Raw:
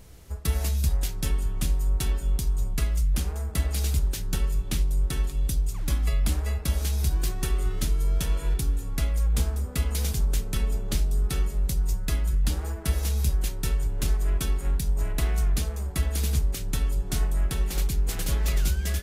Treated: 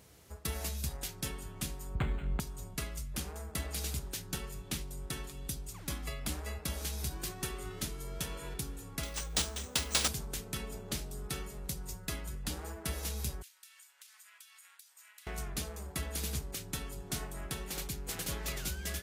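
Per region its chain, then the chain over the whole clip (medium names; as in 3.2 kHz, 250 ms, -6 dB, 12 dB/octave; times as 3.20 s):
1.95–2.40 s: tone controls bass +10 dB, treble +2 dB + decimation joined by straight lines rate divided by 8×
9.03–10.08 s: tone controls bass -2 dB, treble +11 dB + careless resampling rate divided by 3×, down none, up hold
13.42–15.27 s: Bessel high-pass 2.1 kHz, order 4 + compression, threshold -48 dBFS
whole clip: high-pass 85 Hz 12 dB/octave; bass shelf 270 Hz -5 dB; trim -4.5 dB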